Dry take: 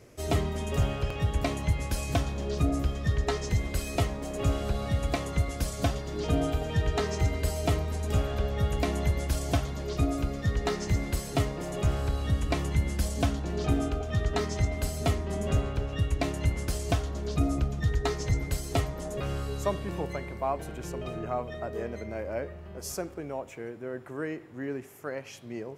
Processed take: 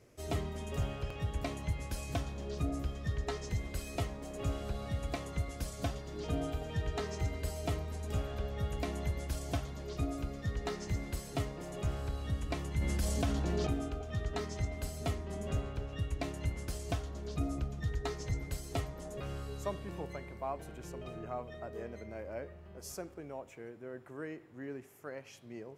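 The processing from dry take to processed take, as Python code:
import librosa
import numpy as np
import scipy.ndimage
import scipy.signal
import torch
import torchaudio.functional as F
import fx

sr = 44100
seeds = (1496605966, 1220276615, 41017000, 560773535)

y = fx.env_flatten(x, sr, amount_pct=70, at=(12.77, 13.67))
y = F.gain(torch.from_numpy(y), -8.5).numpy()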